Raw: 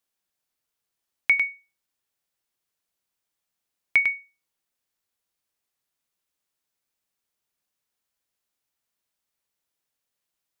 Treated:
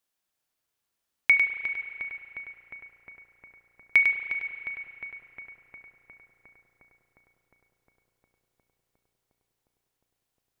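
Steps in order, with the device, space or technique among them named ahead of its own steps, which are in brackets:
dub delay into a spring reverb (feedback echo with a low-pass in the loop 357 ms, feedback 85%, low-pass 2,200 Hz, level −8 dB; spring reverb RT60 2.7 s, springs 34 ms, chirp 70 ms, DRR 6 dB)

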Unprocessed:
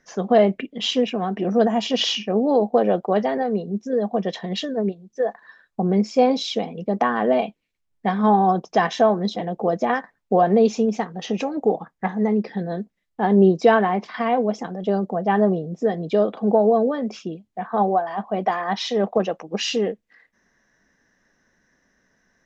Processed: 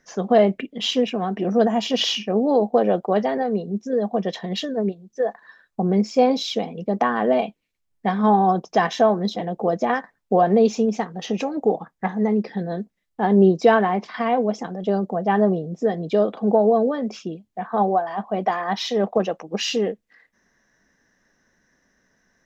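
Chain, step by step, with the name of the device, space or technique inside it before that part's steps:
exciter from parts (in parallel at −11.5 dB: high-pass filter 3,500 Hz 12 dB per octave + soft clipping −36 dBFS, distortion −4 dB)

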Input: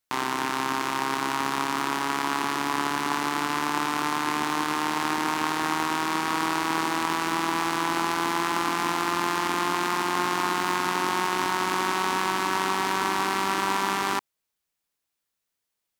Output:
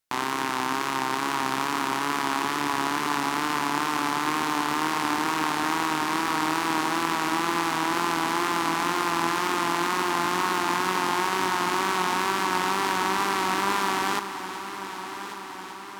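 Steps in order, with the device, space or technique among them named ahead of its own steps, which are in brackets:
multi-head tape echo (echo machine with several playback heads 383 ms, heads first and third, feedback 70%, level −14 dB; tape wow and flutter)

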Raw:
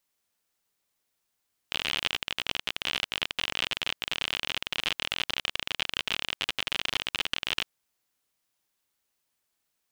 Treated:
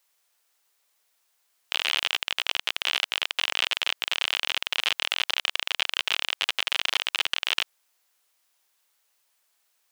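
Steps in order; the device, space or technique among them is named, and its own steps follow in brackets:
high-pass filter 550 Hz 12 dB per octave
clipper into limiter (hard clipping −9 dBFS, distortion −35 dB; brickwall limiter −16.5 dBFS, peak gain reduction 7.5 dB)
level +8.5 dB

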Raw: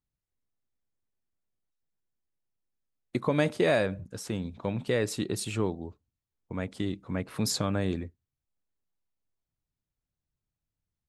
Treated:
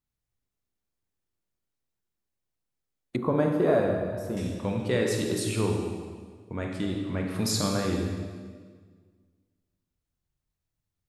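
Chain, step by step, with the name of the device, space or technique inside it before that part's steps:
stairwell (convolution reverb RT60 1.7 s, pre-delay 23 ms, DRR 0.5 dB)
0:03.16–0:04.37: flat-topped bell 4,200 Hz −14 dB 2.6 octaves

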